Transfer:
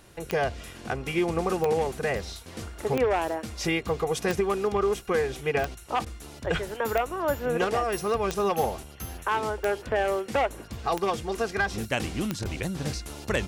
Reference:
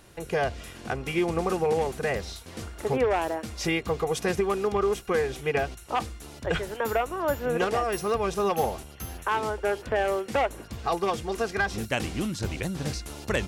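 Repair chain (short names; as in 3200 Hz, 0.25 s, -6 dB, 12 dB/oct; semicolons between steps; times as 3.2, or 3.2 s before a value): de-click; interpolate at 6.05/12.44, 12 ms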